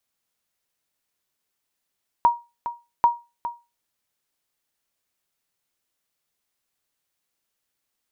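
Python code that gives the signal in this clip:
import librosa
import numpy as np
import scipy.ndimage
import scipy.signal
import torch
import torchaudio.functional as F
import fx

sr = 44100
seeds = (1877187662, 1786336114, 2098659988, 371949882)

y = fx.sonar_ping(sr, hz=948.0, decay_s=0.26, every_s=0.79, pings=2, echo_s=0.41, echo_db=-12.5, level_db=-8.5)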